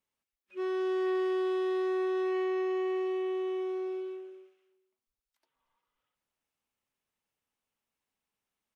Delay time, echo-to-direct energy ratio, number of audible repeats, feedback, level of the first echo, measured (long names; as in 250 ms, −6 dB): 233 ms, −17.0 dB, 2, 26%, −17.5 dB